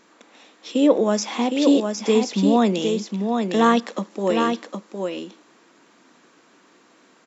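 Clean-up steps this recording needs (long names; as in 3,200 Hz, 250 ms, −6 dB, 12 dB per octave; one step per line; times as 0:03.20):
echo removal 761 ms −5 dB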